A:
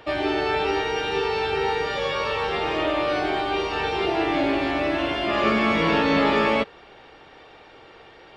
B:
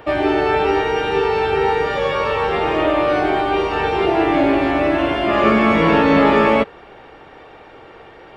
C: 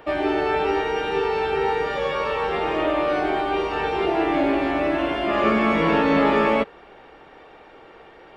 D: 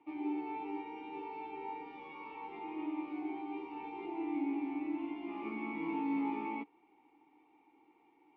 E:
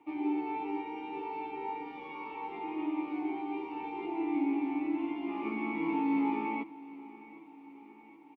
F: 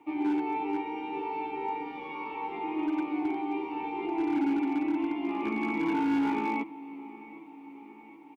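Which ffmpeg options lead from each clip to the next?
-af "equalizer=f=4.6k:t=o:w=1.6:g=-10,volume=7.5dB"
-af "equalizer=f=100:t=o:w=0.52:g=-11,volume=-5dB"
-filter_complex "[0:a]asplit=3[a][b][c];[a]bandpass=f=300:t=q:w=8,volume=0dB[d];[b]bandpass=f=870:t=q:w=8,volume=-6dB[e];[c]bandpass=f=2.24k:t=q:w=8,volume=-9dB[f];[d][e][f]amix=inputs=3:normalize=0,volume=-8.5dB"
-af "aecho=1:1:766|1532|2298|3064|3830:0.112|0.0662|0.0391|0.023|0.0136,volume=5dB"
-af "asoftclip=type=hard:threshold=-28dB,volume=4.5dB"

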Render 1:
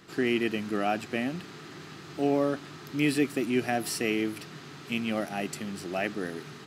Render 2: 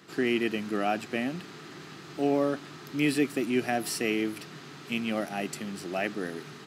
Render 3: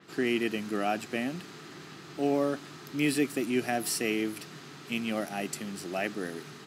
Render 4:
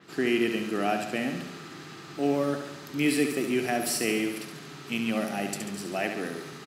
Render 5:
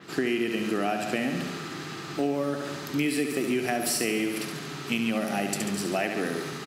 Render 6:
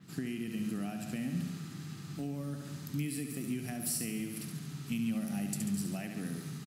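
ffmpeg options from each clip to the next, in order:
-af "highpass=120"
-af "adynamicequalizer=threshold=0.00355:dfrequency=5200:dqfactor=0.7:tfrequency=5200:tqfactor=0.7:attack=5:release=100:ratio=0.375:range=2.5:mode=boostabove:tftype=highshelf,volume=-1.5dB"
-af "aecho=1:1:70|140|210|280|350|420|490|560:0.447|0.264|0.155|0.0917|0.0541|0.0319|0.0188|0.0111,volume=1.5dB"
-af "acompressor=threshold=-30dB:ratio=6,volume=6.5dB"
-af "firequalizer=gain_entry='entry(180,0);entry(370,-19);entry(9800,-4)':delay=0.05:min_phase=1"

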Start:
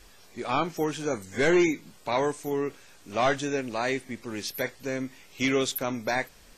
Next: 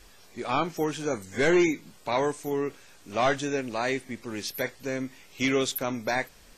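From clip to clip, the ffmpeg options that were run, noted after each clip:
-af anull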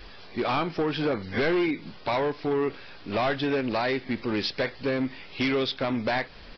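-af "acompressor=threshold=-29dB:ratio=10,aresample=11025,asoftclip=type=hard:threshold=-30dB,aresample=44100,volume=9dB"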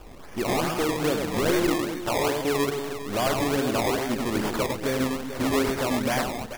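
-af "aecho=1:1:100|240|436|710.4|1095:0.631|0.398|0.251|0.158|0.1,acrusher=samples=21:mix=1:aa=0.000001:lfo=1:lforange=21:lforate=2.4"

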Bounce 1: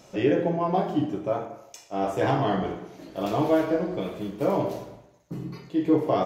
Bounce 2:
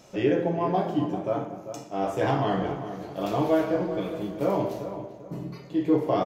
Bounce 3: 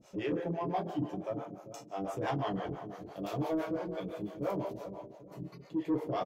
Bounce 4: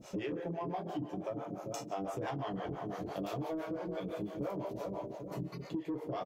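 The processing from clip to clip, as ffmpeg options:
-filter_complex "[0:a]asplit=2[a][b];[b]adelay=394,lowpass=f=1.9k:p=1,volume=-10dB,asplit=2[c][d];[d]adelay=394,lowpass=f=1.9k:p=1,volume=0.34,asplit=2[e][f];[f]adelay=394,lowpass=f=1.9k:p=1,volume=0.34,asplit=2[g][h];[h]adelay=394,lowpass=f=1.9k:p=1,volume=0.34[i];[a][c][e][g][i]amix=inputs=5:normalize=0,volume=-1dB"
-filter_complex "[0:a]acrossover=split=450[a][b];[a]aeval=exprs='val(0)*(1-1/2+1/2*cos(2*PI*5.9*n/s))':c=same[c];[b]aeval=exprs='val(0)*(1-1/2-1/2*cos(2*PI*5.9*n/s))':c=same[d];[c][d]amix=inputs=2:normalize=0,asoftclip=type=tanh:threshold=-20dB,volume=-3.5dB"
-af "acompressor=threshold=-43dB:ratio=12,volume=8dB"

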